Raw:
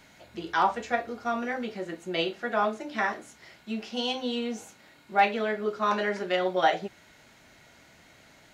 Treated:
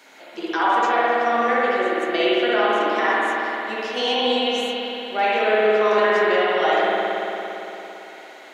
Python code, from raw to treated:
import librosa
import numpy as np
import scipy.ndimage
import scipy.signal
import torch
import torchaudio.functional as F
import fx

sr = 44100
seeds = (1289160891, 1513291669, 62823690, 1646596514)

p1 = scipy.signal.sosfilt(scipy.signal.butter(4, 300.0, 'highpass', fs=sr, output='sos'), x)
p2 = fx.over_compress(p1, sr, threshold_db=-30.0, ratio=-1.0)
p3 = p1 + (p2 * librosa.db_to_amplitude(1.5))
p4 = fx.rev_spring(p3, sr, rt60_s=3.4, pass_ms=(56,), chirp_ms=45, drr_db=-7.0)
y = p4 * librosa.db_to_amplitude(-3.0)